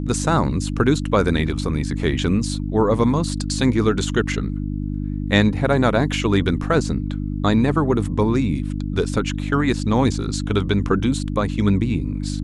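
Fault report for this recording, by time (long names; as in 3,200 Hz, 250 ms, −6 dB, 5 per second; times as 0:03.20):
mains hum 50 Hz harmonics 6 −25 dBFS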